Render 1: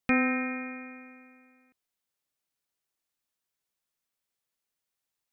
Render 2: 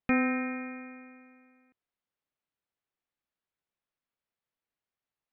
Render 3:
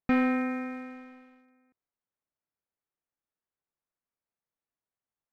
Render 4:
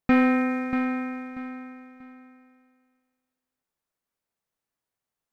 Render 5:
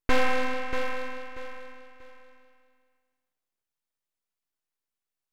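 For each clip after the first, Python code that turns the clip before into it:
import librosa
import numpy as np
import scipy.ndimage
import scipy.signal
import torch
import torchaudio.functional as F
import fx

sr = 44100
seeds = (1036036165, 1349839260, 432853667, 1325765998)

y1 = fx.air_absorb(x, sr, metres=300.0)
y2 = scipy.signal.sosfilt(scipy.signal.butter(2, 1800.0, 'lowpass', fs=sr, output='sos'), y1)
y2 = fx.leveller(y2, sr, passes=1)
y3 = fx.echo_feedback(y2, sr, ms=637, feedback_pct=28, wet_db=-9.5)
y3 = F.gain(torch.from_numpy(y3), 5.5).numpy()
y4 = np.abs(y3)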